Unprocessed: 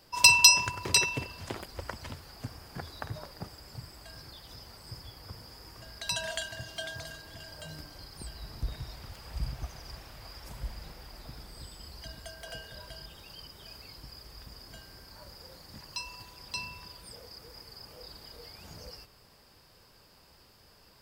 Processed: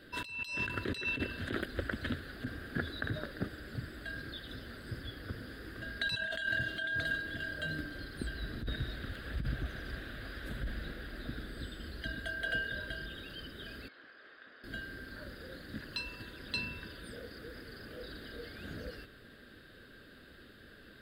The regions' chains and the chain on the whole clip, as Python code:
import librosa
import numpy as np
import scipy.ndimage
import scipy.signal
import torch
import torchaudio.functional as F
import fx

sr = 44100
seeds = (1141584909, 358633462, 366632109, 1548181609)

y = fx.chain(x, sr, fx.highpass(hz=820.0, slope=12),
    fx.spacing_loss(db_at_10k=33),
    fx.env_flatten(amount_pct=100), at=(13.88, 14.64))
y = fx.curve_eq(y, sr, hz=(170.0, 250.0, 620.0, 930.0, 1600.0, 2300.0, 3800.0, 5400.0, 9200.0, 15000.0), db=(0, 10, -1, -16, 12, -4, 5, -21, -9, -11))
y = fx.over_compress(y, sr, threshold_db=-35.0, ratio=-1.0)